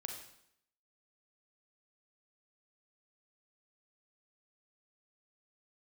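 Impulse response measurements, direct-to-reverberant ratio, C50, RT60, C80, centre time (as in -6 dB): 2.5 dB, 5.0 dB, 0.70 s, 8.0 dB, 31 ms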